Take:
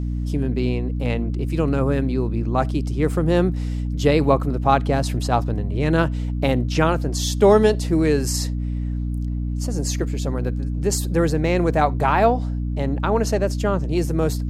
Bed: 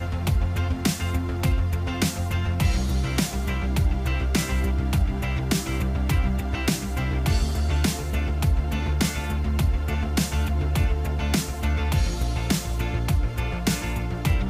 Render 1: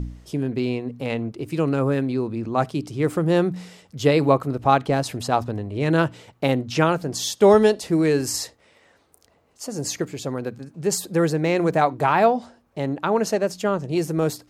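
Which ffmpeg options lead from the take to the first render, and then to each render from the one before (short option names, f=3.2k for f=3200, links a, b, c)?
-af "bandreject=f=60:t=h:w=4,bandreject=f=120:t=h:w=4,bandreject=f=180:t=h:w=4,bandreject=f=240:t=h:w=4,bandreject=f=300:t=h:w=4"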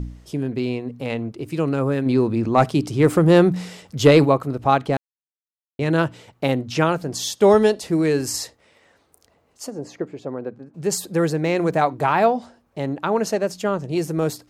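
-filter_complex "[0:a]asplit=3[a][b][c];[a]afade=t=out:st=2.05:d=0.02[d];[b]acontrast=67,afade=t=in:st=2.05:d=0.02,afade=t=out:st=4.24:d=0.02[e];[c]afade=t=in:st=4.24:d=0.02[f];[d][e][f]amix=inputs=3:normalize=0,asplit=3[g][h][i];[g]afade=t=out:st=9.69:d=0.02[j];[h]bandpass=f=480:t=q:w=0.6,afade=t=in:st=9.69:d=0.02,afade=t=out:st=10.73:d=0.02[k];[i]afade=t=in:st=10.73:d=0.02[l];[j][k][l]amix=inputs=3:normalize=0,asplit=3[m][n][o];[m]atrim=end=4.97,asetpts=PTS-STARTPTS,afade=t=out:st=4.966:d=0.004:c=hsin[p];[n]atrim=start=4.97:end=5.79,asetpts=PTS-STARTPTS,volume=0[q];[o]atrim=start=5.79,asetpts=PTS-STARTPTS,afade=t=in:d=0.004:c=hsin[r];[p][q][r]concat=n=3:v=0:a=1"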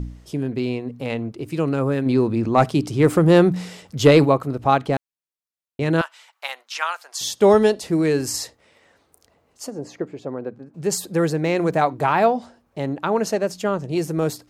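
-filter_complex "[0:a]asettb=1/sr,asplit=3[a][b][c];[a]atrim=end=6.014[d];[b]atrim=start=6.01:end=7.21,asetpts=PTS-STARTPTS,afade=t=in:d=0.004:c=qsin,afade=t=out:st=1.196:d=0.004:c=qsin,highpass=f=930:w=0.5412,highpass=f=930:w=1.3066[e];[c]atrim=start=7.206[f];[d][e]acrossfade=d=0.004:c1=hsin:c2=qsin[g];[g][f]acrossfade=d=0.004:c1=qsin:c2=hsin"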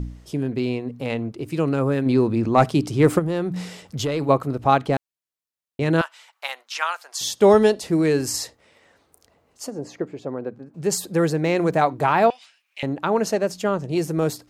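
-filter_complex "[0:a]asplit=3[a][b][c];[a]afade=t=out:st=3.18:d=0.02[d];[b]acompressor=threshold=-23dB:ratio=4:attack=3.2:release=140:knee=1:detection=peak,afade=t=in:st=3.18:d=0.02,afade=t=out:st=4.28:d=0.02[e];[c]afade=t=in:st=4.28:d=0.02[f];[d][e][f]amix=inputs=3:normalize=0,asettb=1/sr,asplit=3[g][h][i];[g]atrim=end=12.304[j];[h]atrim=start=12.3:end=12.83,asetpts=PTS-STARTPTS,afade=t=in:d=0.004:c=qsin,afade=t=out:st=0.526:d=0.004:c=qsin,highpass=f=2.5k:t=q:w=5[k];[i]atrim=start=12.826[l];[j][k]acrossfade=d=0.004:c1=hsin:c2=qsin[m];[m][l]acrossfade=d=0.004:c1=qsin:c2=hsin"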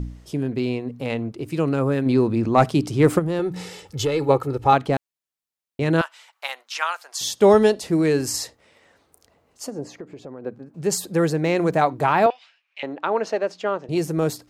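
-filter_complex "[0:a]asettb=1/sr,asplit=3[a][b][c];[a]atrim=end=3.394[d];[b]atrim=start=3.39:end=4.73,asetpts=PTS-STARTPTS,afade=t=in:d=0.004:c=qsin,afade=t=out:st=1.336:d=0.004:c=qsin,aecho=1:1:2.3:0.65,atrim=end_sample=59094[e];[c]atrim=start=4.726[f];[d][e]acrossfade=d=0.004:c1=hsin:c2=qsin[g];[g][f]acrossfade=d=0.004:c1=qsin:c2=hsin,asettb=1/sr,asplit=3[h][i][j];[h]atrim=end=9.904[k];[i]atrim=start=9.9:end=10.44,asetpts=PTS-STARTPTS,afade=t=in:d=0.004:c=qsin,afade=t=out:st=0.536:d=0.004:c=qsin,acompressor=threshold=-35dB:ratio=3:attack=3.2:release=140:knee=1:detection=peak[l];[j]atrim=start=10.436[m];[k][l]acrossfade=d=0.004:c1=hsin:c2=qsin[n];[n][m]acrossfade=d=0.004:c1=qsin:c2=hsin,asettb=1/sr,asplit=3[o][p][q];[o]atrim=end=12.264[r];[p]atrim=start=12.26:end=13.89,asetpts=PTS-STARTPTS,afade=t=in:d=0.004:c=qsin,afade=t=out:st=1.626:d=0.004:c=qsin,highpass=370,lowpass=3.8k[s];[q]atrim=start=13.886[t];[r][s]acrossfade=d=0.004:c1=hsin:c2=qsin[u];[u][t]acrossfade=d=0.004:c1=qsin:c2=hsin"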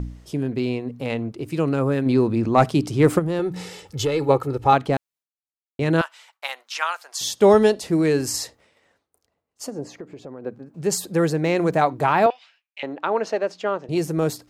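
-af "agate=range=-33dB:threshold=-50dB:ratio=3:detection=peak"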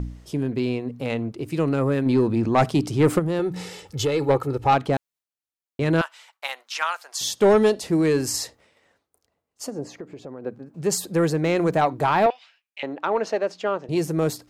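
-af "asoftclip=type=tanh:threshold=-9.5dB"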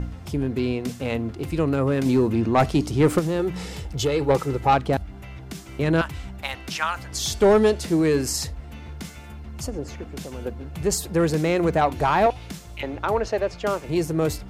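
-filter_complex "[1:a]volume=-13dB[a];[0:a][a]amix=inputs=2:normalize=0"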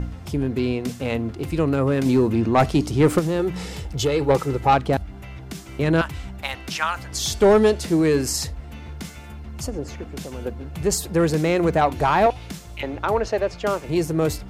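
-af "volume=1.5dB"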